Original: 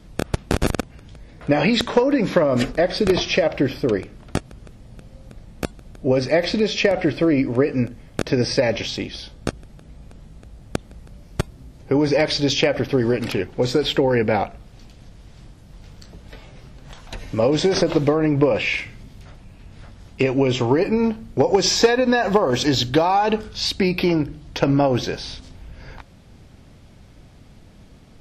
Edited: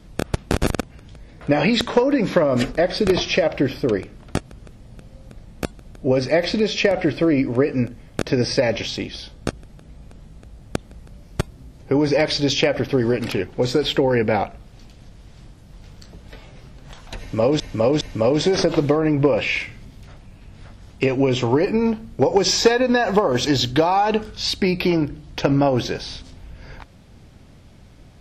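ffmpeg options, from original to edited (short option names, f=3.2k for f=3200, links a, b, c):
-filter_complex "[0:a]asplit=3[a][b][c];[a]atrim=end=17.602[d];[b]atrim=start=17.188:end=17.602[e];[c]atrim=start=17.188[f];[d][e]acrossfade=d=0.004:c1=hsin:c2=hsin[g];[g][f]acrossfade=d=0.004:c1=hsin:c2=hsin"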